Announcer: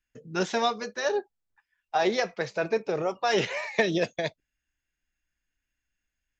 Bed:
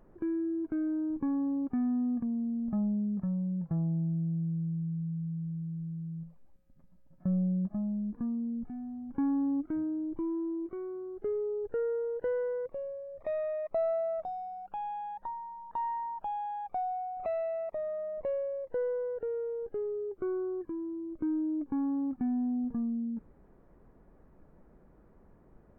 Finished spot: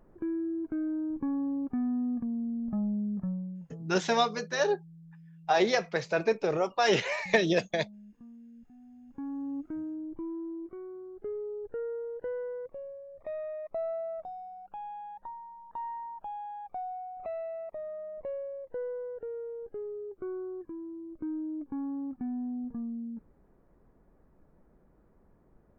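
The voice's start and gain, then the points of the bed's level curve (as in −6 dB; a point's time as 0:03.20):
3.55 s, 0.0 dB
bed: 0:03.28 −0.5 dB
0:03.90 −17 dB
0:08.51 −17 dB
0:09.66 −4 dB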